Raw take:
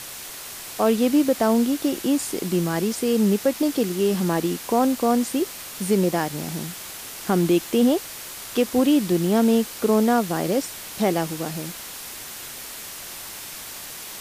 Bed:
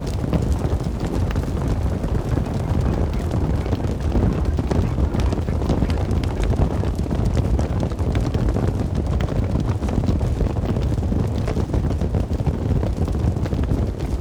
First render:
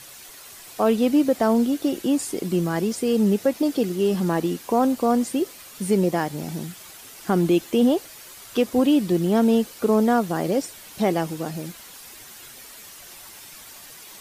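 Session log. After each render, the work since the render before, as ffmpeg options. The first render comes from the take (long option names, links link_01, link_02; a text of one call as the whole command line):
ffmpeg -i in.wav -af "afftdn=noise_reduction=9:noise_floor=-37" out.wav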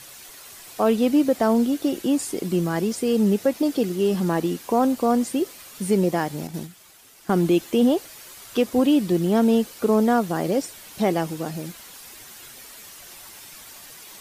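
ffmpeg -i in.wav -filter_complex "[0:a]asettb=1/sr,asplit=3[link_01][link_02][link_03];[link_01]atrim=end=6.474[link_04];[link_02]atrim=start=6.47:end=7.48,asetpts=PTS-STARTPTS,afade=type=in:duration=0.004:curve=qsin,afade=type=out:start_time=1.006:duration=0.004:curve=qsin,agate=range=-8dB:threshold=-32dB:ratio=16:release=100:detection=peak[link_05];[link_03]atrim=start=7.476[link_06];[link_04][link_05]acrossfade=duration=0.004:curve1=hsin:curve2=qsin[link_07];[link_07][link_06]acrossfade=duration=0.004:curve1=qsin:curve2=hsin" out.wav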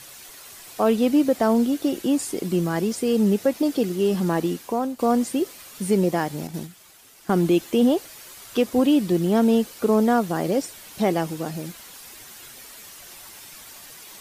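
ffmpeg -i in.wav -filter_complex "[0:a]asplit=2[link_01][link_02];[link_01]atrim=end=4.99,asetpts=PTS-STARTPTS,afade=type=out:start_time=4.5:duration=0.49:silence=0.266073[link_03];[link_02]atrim=start=4.99,asetpts=PTS-STARTPTS,afade=type=in:duration=0.004:curve=hsin:silence=0.266073[link_04];[link_03][link_04]concat=n=2:v=0:a=1" out.wav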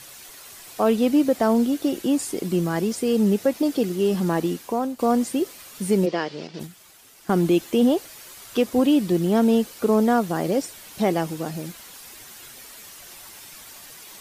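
ffmpeg -i in.wav -filter_complex "[0:a]asplit=3[link_01][link_02][link_03];[link_01]afade=type=out:start_time=6.05:duration=0.02[link_04];[link_02]highpass=250,equalizer=frequency=270:width_type=q:width=4:gain=-5,equalizer=frequency=440:width_type=q:width=4:gain=5,equalizer=frequency=800:width_type=q:width=4:gain=-7,equalizer=frequency=2900:width_type=q:width=4:gain=6,equalizer=frequency=4800:width_type=q:width=4:gain=6,lowpass=frequency=5300:width=0.5412,lowpass=frequency=5300:width=1.3066,afade=type=in:start_time=6.05:duration=0.02,afade=type=out:start_time=6.59:duration=0.02[link_05];[link_03]afade=type=in:start_time=6.59:duration=0.02[link_06];[link_04][link_05][link_06]amix=inputs=3:normalize=0" out.wav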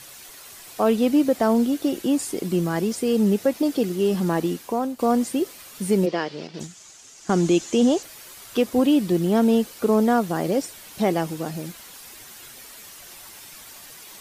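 ffmpeg -i in.wav -filter_complex "[0:a]asettb=1/sr,asplit=3[link_01][link_02][link_03];[link_01]atrim=end=6.604[link_04];[link_02]atrim=start=6.6:end=8.03,asetpts=PTS-STARTPTS,afade=type=in:duration=0.004:curve=qsin,afade=type=out:start_time=1.426:duration=0.004:curve=qsin,lowpass=frequency=6800:width_type=q:width=4.1[link_05];[link_03]atrim=start=8.026[link_06];[link_04][link_05]acrossfade=duration=0.004:curve1=hsin:curve2=qsin[link_07];[link_07][link_06]acrossfade=duration=0.004:curve1=qsin:curve2=hsin" out.wav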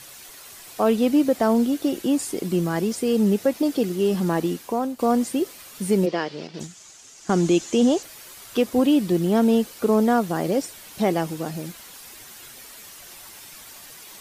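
ffmpeg -i in.wav -af anull out.wav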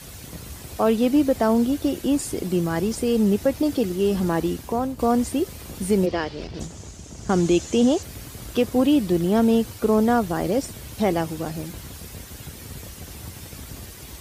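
ffmpeg -i in.wav -i bed.wav -filter_complex "[1:a]volume=-19dB[link_01];[0:a][link_01]amix=inputs=2:normalize=0" out.wav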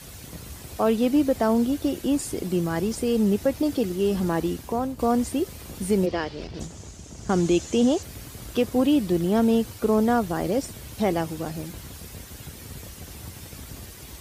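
ffmpeg -i in.wav -af "volume=-2dB" out.wav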